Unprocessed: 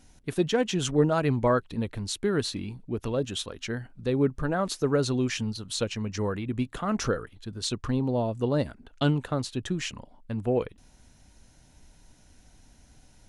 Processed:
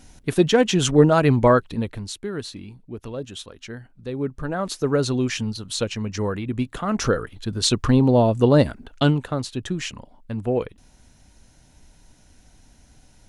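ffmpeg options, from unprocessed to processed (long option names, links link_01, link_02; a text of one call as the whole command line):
ffmpeg -i in.wav -af "volume=22dB,afade=type=out:start_time=1.47:duration=0.74:silence=0.266073,afade=type=in:start_time=4.15:duration=0.83:silence=0.421697,afade=type=in:start_time=6.93:duration=0.59:silence=0.473151,afade=type=out:start_time=8.62:duration=0.63:silence=0.421697" out.wav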